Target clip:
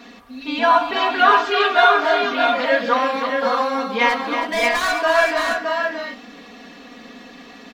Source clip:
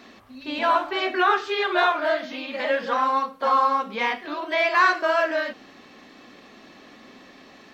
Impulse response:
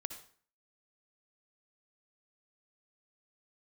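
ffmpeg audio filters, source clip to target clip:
-filter_complex "[0:a]asplit=3[link_01][link_02][link_03];[link_01]afade=type=out:start_time=4.08:duration=0.02[link_04];[link_02]asoftclip=type=hard:threshold=-23dB,afade=type=in:start_time=4.08:duration=0.02,afade=type=out:start_time=4.96:duration=0.02[link_05];[link_03]afade=type=in:start_time=4.96:duration=0.02[link_06];[link_04][link_05][link_06]amix=inputs=3:normalize=0,aecho=1:1:4.2:0.88,asplit=2[link_07][link_08];[link_08]aecho=0:1:141|323|619|648:0.126|0.376|0.501|0.266[link_09];[link_07][link_09]amix=inputs=2:normalize=0,volume=2.5dB"

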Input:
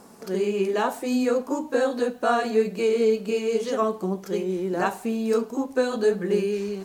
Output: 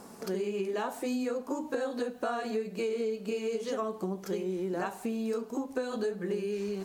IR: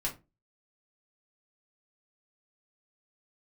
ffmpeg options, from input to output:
-af "acompressor=threshold=-30dB:ratio=6"

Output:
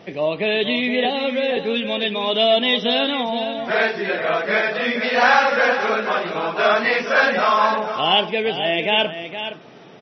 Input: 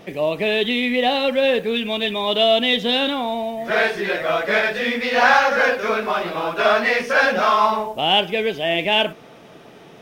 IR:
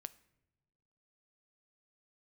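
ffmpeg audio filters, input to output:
-filter_complex "[0:a]highpass=96,asettb=1/sr,asplit=3[link_01][link_02][link_03];[link_01]atrim=end=1.054[link_04];[link_02]atrim=start=1.05:end=1.57,asetpts=PTS-STARTPTS,afade=type=in:duration=0.004:curve=qsin,afade=type=out:start_time=0.516:duration=0.004:curve=qsin,acrossover=split=780|1700|4300[link_05][link_06][link_07][link_08];[link_05]acompressor=threshold=-21dB:ratio=4[link_09];[link_06]acompressor=threshold=-32dB:ratio=4[link_10];[link_07]acompressor=threshold=-29dB:ratio=4[link_11];[link_08]acompressor=threshold=-40dB:ratio=4[link_12];[link_09][link_10][link_11][link_12]amix=inputs=4:normalize=0[link_13];[link_03]atrim=start=1.566[link_14];[link_04][link_13]acrossfade=duration=0.004:curve1=hsin:curve2=qsin[link_15];[link_15][link_14]acrossfade=duration=0.004:curve1=qsin:curve2=hsin,asplit=3[link_16][link_17][link_18];[link_16]afade=type=out:start_time=3.8:duration=0.02[link_19];[link_17]adynamicequalizer=threshold=0.0158:dfrequency=3600:dqfactor=1.8:tfrequency=3600:tqfactor=1.8:attack=5:release=100:ratio=0.375:range=2:mode=cutabove:tftype=bell,afade=type=in:start_time=3.8:duration=0.02,afade=type=out:start_time=4.72:duration=0.02[link_20];[link_18]afade=type=in:start_time=4.72:duration=0.02[link_21];[link_19][link_20][link_21]amix=inputs=3:normalize=0,aecho=1:1:466:0.316,aresample=16000,aresample=44100" -ar 24000 -c:a libmp3lame -b:a 24k

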